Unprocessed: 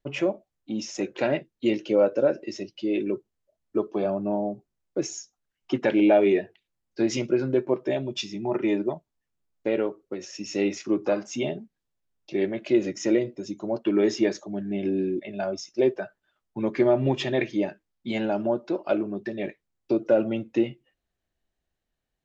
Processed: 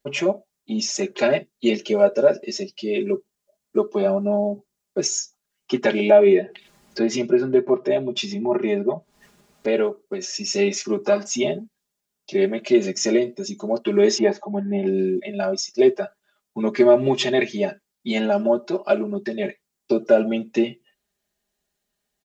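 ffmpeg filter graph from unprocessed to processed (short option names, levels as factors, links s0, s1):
-filter_complex "[0:a]asettb=1/sr,asplit=3[s0][s1][s2];[s0]atrim=end=6.104[s3];[s1]atrim=start=6.1:end=9.68,asetpts=PTS-STARTPTS,afade=t=in:d=0.004:c=qsin,afade=t=out:st=3.576:d=0.004:c=qsin,lowpass=f=1900:p=1,acompressor=mode=upward:threshold=0.0501:ratio=2.5:attack=3.2:release=140:knee=2.83:detection=peak[s4];[s2]atrim=start=9.676[s5];[s3][s4]acrossfade=d=0.004:c1=hsin:c2=qsin[s6];[s6][s5]acrossfade=d=0.004:c1=qsin:c2=hsin,asettb=1/sr,asplit=3[s7][s8][s9];[s7]atrim=end=14.184[s10];[s8]atrim=start=14.18:end=14.87,asetpts=PTS-STARTPTS,afade=t=in:d=0.004:c=qsin,afade=t=out:st=0.686:d=0.004:c=qsin,lowpass=2100,equalizer=f=840:t=o:w=0.29:g=13[s11];[s9]atrim=start=14.866[s12];[s10][s11]acrossfade=d=0.004:c1=hsin:c2=qsin[s13];[s13][s12]acrossfade=d=0.004:c1=qsin:c2=hsin,highpass=f=120:p=1,bass=f=250:g=-1,treble=f=4000:g=8,aecho=1:1:4.9:0.94,volume=1.33"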